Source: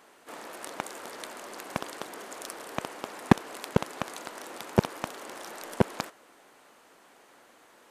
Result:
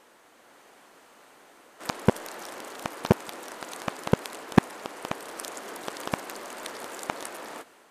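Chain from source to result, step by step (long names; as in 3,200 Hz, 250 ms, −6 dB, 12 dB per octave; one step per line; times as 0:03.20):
played backwards from end to start
automatic gain control gain up to 3 dB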